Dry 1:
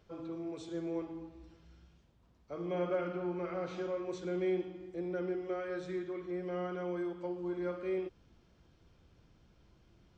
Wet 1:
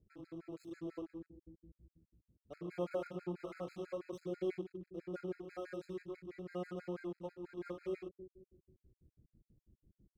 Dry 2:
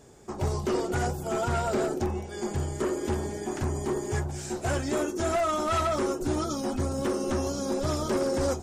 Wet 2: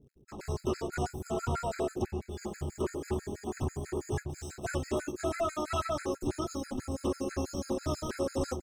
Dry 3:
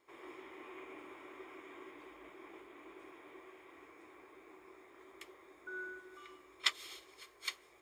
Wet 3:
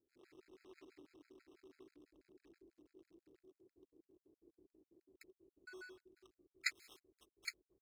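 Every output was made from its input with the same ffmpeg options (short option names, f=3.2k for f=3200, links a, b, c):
-filter_complex "[0:a]acrossover=split=390[a][b];[a]aecho=1:1:239|478|717|956:0.398|0.123|0.0383|0.0119[c];[b]aeval=exprs='sgn(val(0))*max(abs(val(0))-0.00282,0)':c=same[d];[c][d]amix=inputs=2:normalize=0,afftfilt=real='re*gt(sin(2*PI*6.1*pts/sr)*(1-2*mod(floor(b*sr/1024/1300),2)),0)':imag='im*gt(sin(2*PI*6.1*pts/sr)*(1-2*mod(floor(b*sr/1024/1300),2)),0)':win_size=1024:overlap=0.75,volume=-2.5dB"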